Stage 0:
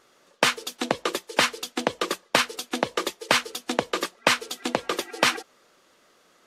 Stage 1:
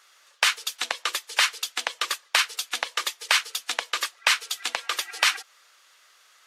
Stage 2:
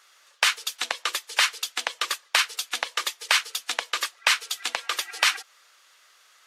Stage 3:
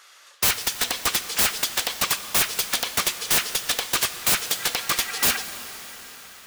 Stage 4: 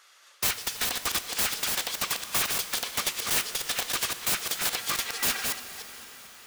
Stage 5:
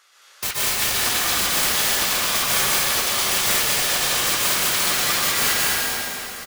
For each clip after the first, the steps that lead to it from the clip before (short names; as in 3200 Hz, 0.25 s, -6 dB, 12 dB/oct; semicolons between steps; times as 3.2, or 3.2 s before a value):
HPF 1400 Hz 12 dB/oct; in parallel at -0.5 dB: compressor, threshold -31 dBFS, peak gain reduction 12.5 dB
nothing audible
wrapped overs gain 20 dB; plate-style reverb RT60 4.8 s, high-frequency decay 0.95×, DRR 9.5 dB; gain +6.5 dB
reverse delay 0.224 s, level -3.5 dB; gain -6.5 dB
echo 0.217 s -4.5 dB; plate-style reverb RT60 2.7 s, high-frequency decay 0.75×, pre-delay 0.11 s, DRR -8 dB